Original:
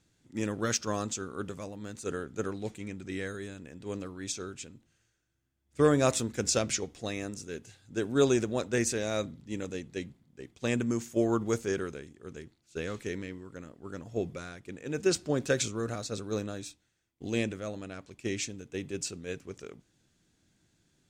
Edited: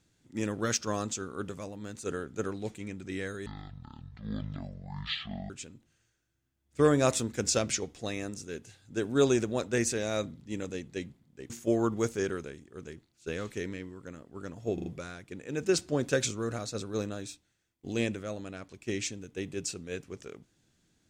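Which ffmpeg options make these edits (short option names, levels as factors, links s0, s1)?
-filter_complex "[0:a]asplit=7[s0][s1][s2][s3][s4][s5][s6];[s0]atrim=end=3.464[s7];[s1]atrim=start=3.46:end=4.5,asetpts=PTS-STARTPTS,asetrate=22491,aresample=44100,atrim=end_sample=89929,asetpts=PTS-STARTPTS[s8];[s2]atrim=start=4.496:end=10.502[s9];[s3]atrim=start=10.988:end=14.272[s10];[s4]atrim=start=14.228:end=14.272[s11];[s5]atrim=start=14.228:end=14.272[s12];[s6]atrim=start=14.228[s13];[s7][s8]acrossfade=d=0.004:c1=hsin:c2=hsin[s14];[s14][s9]acrossfade=d=0.004:c1=hsin:c2=hsin[s15];[s15][s10]acrossfade=d=0.004:c1=hsin:c2=hsin[s16];[s16][s11]acrossfade=d=0.004:c1=hsin:c2=hsin[s17];[s17][s12]acrossfade=d=0.004:c1=hsin:c2=hsin[s18];[s18][s13]acrossfade=d=0.004:c1=hsin:c2=hsin"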